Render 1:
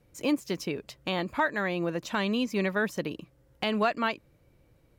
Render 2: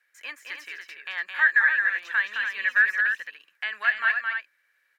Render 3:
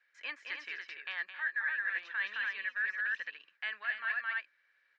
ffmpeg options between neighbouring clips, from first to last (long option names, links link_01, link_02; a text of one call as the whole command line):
ffmpeg -i in.wav -filter_complex "[0:a]acrossover=split=3200[link_01][link_02];[link_02]acompressor=threshold=-48dB:ratio=4:attack=1:release=60[link_03];[link_01][link_03]amix=inputs=2:normalize=0,highpass=frequency=1700:width_type=q:width=11,asplit=2[link_04][link_05];[link_05]aecho=0:1:215.7|288.6:0.562|0.447[link_06];[link_04][link_06]amix=inputs=2:normalize=0,volume=-3.5dB" out.wav
ffmpeg -i in.wav -af "lowpass=frequency=5000:width=0.5412,lowpass=frequency=5000:width=1.3066,areverse,acompressor=threshold=-29dB:ratio=6,areverse,volume=-3dB" out.wav